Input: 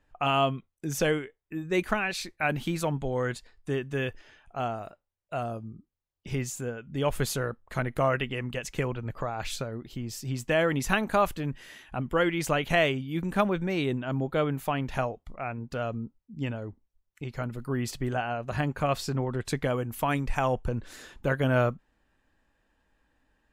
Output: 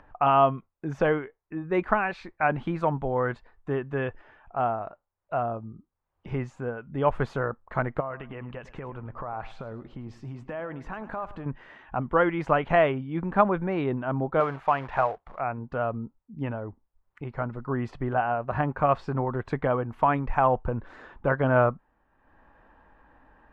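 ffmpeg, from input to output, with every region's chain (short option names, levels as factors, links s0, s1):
-filter_complex "[0:a]asettb=1/sr,asplit=3[s0][s1][s2];[s0]atrim=end=8.004[s3];[s1]atrim=start=8:end=11.46,asetpts=PTS-STARTPTS,afade=t=in:d=0.004:c=qsin,afade=t=out:st=3.456:d=0.004:c=qsin,acompressor=threshold=0.02:ratio=10:attack=3.2:release=140:knee=1:detection=peak,aecho=1:1:105|210|315:0.158|0.0523|0.0173,atrim=end_sample=152586[s4];[s2]atrim=start=11.456[s5];[s3][s4]acrossfade=d=0.004:c1=hsin:c2=qsin[s6];[s6][s5]acrossfade=d=0.004:c1=qsin:c2=hsin,asettb=1/sr,asplit=3[s7][s8][s9];[s7]atrim=end=14.404[s10];[s8]atrim=start=14.4:end=15.4,asetpts=PTS-STARTPTS,afade=t=in:d=0.004:c=qsin,afade=t=out:st=0.996:d=0.004:c=qsin,equalizer=f=250:t=o:w=0.67:g=-7,acrusher=bits=3:mode=log:mix=0:aa=0.000001,asplit=2[s11][s12];[s12]highpass=f=720:p=1,volume=2.24,asoftclip=type=tanh:threshold=0.158[s13];[s11][s13]amix=inputs=2:normalize=0,lowpass=f=7400:p=1,volume=0.501[s14];[s9]atrim=start=15.396[s15];[s10][s14]acrossfade=d=0.004:c1=hsin:c2=qsin[s16];[s16][s15]acrossfade=d=0.004:c1=qsin:c2=hsin,lowpass=1700,equalizer=f=980:t=o:w=1.4:g=8.5,acompressor=mode=upward:threshold=0.00562:ratio=2.5"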